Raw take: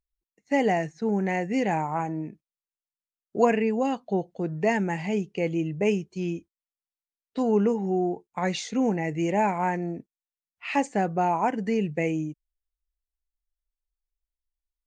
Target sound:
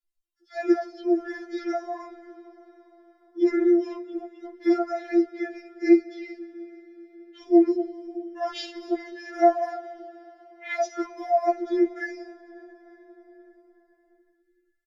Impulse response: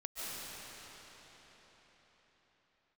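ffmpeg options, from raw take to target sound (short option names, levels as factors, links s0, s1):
-filter_complex "[0:a]acrossover=split=1500[s0][s1];[s0]adelay=40[s2];[s2][s1]amix=inputs=2:normalize=0,asetrate=35002,aresample=44100,atempo=1.25992,asplit=2[s3][s4];[1:a]atrim=start_sample=2205[s5];[s4][s5]afir=irnorm=-1:irlink=0,volume=0.126[s6];[s3][s6]amix=inputs=2:normalize=0,afftfilt=real='re*4*eq(mod(b,16),0)':imag='im*4*eq(mod(b,16),0)':win_size=2048:overlap=0.75,volume=1.19"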